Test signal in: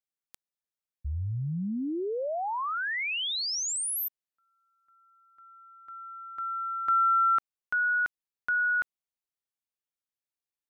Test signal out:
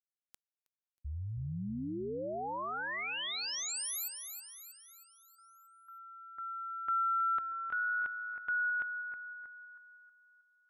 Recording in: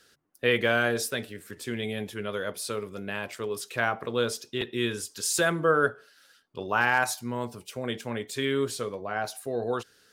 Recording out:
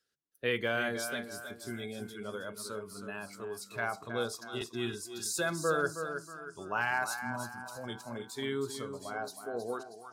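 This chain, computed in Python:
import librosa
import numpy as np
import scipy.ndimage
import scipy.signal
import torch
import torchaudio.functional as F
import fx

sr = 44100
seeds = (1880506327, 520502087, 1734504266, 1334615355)

p1 = x + fx.echo_feedback(x, sr, ms=318, feedback_pct=50, wet_db=-7.5, dry=0)
p2 = fx.noise_reduce_blind(p1, sr, reduce_db=15)
y = F.gain(torch.from_numpy(p2), -7.5).numpy()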